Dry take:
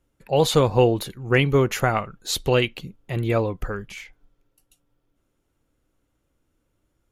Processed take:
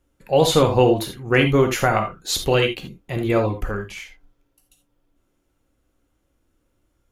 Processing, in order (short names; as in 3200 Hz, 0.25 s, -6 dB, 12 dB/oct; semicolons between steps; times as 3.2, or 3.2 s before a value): non-linear reverb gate 0.1 s flat, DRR 4.5 dB; gain +1.5 dB